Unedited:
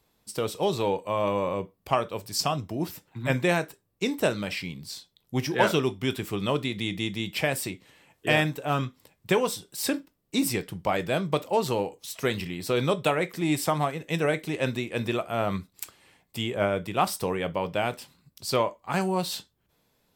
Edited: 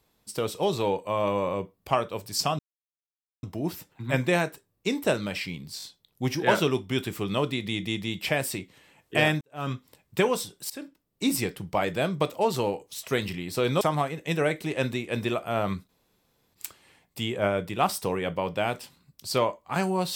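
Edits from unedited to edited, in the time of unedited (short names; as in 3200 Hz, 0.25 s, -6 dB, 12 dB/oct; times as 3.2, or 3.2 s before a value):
2.59 insert silence 0.84 s
4.94 stutter 0.02 s, 3 plays
8.53–8.84 fade in quadratic
9.82–10.38 fade in, from -19.5 dB
12.93–13.64 cut
15.72 insert room tone 0.65 s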